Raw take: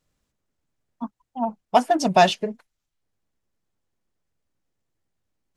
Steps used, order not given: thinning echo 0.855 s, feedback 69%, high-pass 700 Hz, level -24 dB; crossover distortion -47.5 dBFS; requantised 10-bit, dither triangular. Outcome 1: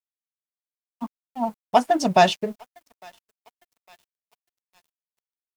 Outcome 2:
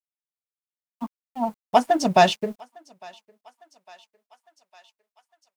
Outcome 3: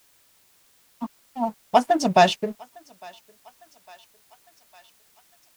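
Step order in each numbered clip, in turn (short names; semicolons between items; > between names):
requantised > thinning echo > crossover distortion; requantised > crossover distortion > thinning echo; crossover distortion > requantised > thinning echo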